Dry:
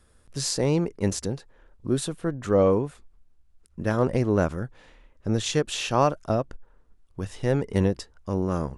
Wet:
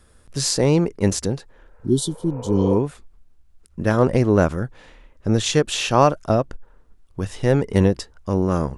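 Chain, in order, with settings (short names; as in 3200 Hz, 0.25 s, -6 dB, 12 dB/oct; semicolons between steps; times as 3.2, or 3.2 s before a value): spectral repair 1.75–2.72, 420–2900 Hz both; gain +6 dB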